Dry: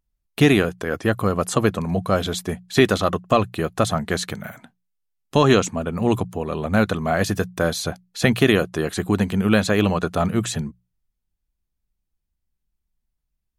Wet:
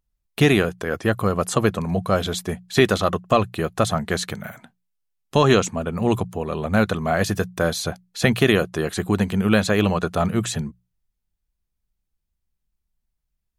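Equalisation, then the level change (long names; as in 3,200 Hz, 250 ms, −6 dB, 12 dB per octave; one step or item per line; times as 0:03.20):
parametric band 280 Hz −4 dB 0.28 octaves
0.0 dB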